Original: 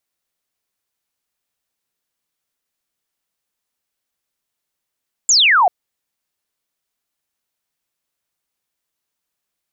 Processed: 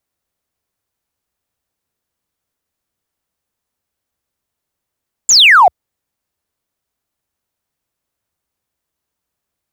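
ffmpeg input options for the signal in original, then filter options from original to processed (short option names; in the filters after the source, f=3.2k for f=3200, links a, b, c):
-f lavfi -i "aevalsrc='0.355*clip(t/0.002,0,1)*clip((0.39-t)/0.002,0,1)*sin(2*PI*7500*0.39/log(670/7500)*(exp(log(670/7500)*t/0.39)-1))':d=0.39:s=44100"
-filter_complex "[0:a]asplit=2[a][b];[b]adynamicsmooth=sensitivity=6:basefreq=1.9k,volume=0dB[c];[a][c]amix=inputs=2:normalize=0,equalizer=f=74:t=o:w=1.1:g=8.5"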